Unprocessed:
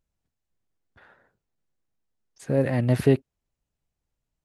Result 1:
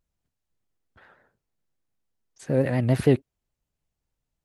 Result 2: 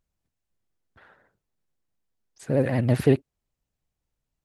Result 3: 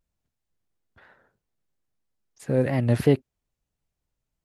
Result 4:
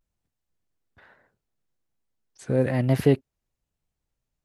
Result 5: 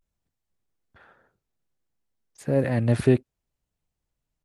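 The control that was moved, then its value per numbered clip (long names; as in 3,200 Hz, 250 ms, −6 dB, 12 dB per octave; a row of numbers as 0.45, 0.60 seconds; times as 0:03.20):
pitch vibrato, speed: 6.9, 16, 3, 1.1, 0.58 Hertz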